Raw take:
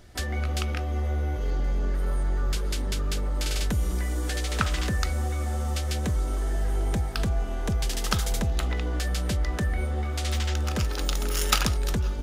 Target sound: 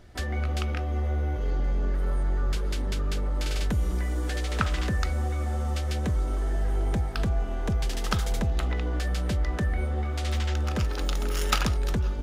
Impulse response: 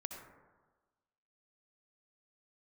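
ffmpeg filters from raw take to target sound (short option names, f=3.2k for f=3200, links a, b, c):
-af "highshelf=f=4.2k:g=-8.5"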